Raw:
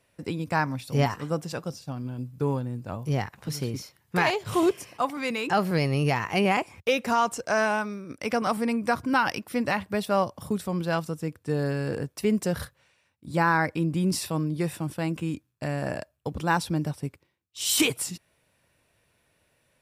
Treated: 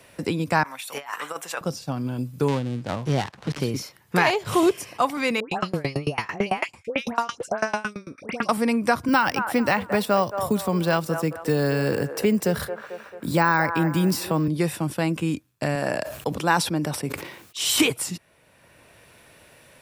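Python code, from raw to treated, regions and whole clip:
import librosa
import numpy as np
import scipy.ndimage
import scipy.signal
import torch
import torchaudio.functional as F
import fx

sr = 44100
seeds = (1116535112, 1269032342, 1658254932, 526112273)

y = fx.chain(x, sr, fx.highpass(hz=1000.0, slope=12),
    fx.peak_eq(hz=4900.0, db=-11.0, octaves=0.5),
    fx.over_compress(threshold_db=-39.0, ratio=-0.5), at=(0.63, 1.61))
y = fx.chain(y, sr, fx.dead_time(dead_ms=0.21),
    fx.air_absorb(metres=64.0), at=(2.48, 3.6))
y = fx.chain(y, sr, fx.lowpass(hz=9800.0, slope=12),
    fx.dispersion(late='highs', ms=119.0, hz=1700.0),
    fx.tremolo_decay(direction='decaying', hz=9.0, depth_db=27), at=(5.4, 8.49))
y = fx.chain(y, sr, fx.resample_bad(factor=2, down='none', up='hold'),
    fx.echo_wet_bandpass(ms=221, feedback_pct=30, hz=870.0, wet_db=-10.0),
    fx.band_squash(depth_pct=40), at=(9.08, 14.48))
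y = fx.chain(y, sr, fx.highpass(hz=210.0, slope=6),
    fx.sustainer(db_per_s=75.0), at=(15.75, 17.64))
y = fx.low_shelf(y, sr, hz=150.0, db=-5.5)
y = fx.band_squash(y, sr, depth_pct=40)
y = y * 10.0 ** (5.5 / 20.0)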